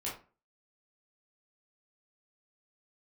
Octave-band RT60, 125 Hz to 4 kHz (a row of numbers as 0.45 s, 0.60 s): 0.40 s, 0.40 s, 0.35 s, 0.35 s, 0.30 s, 0.25 s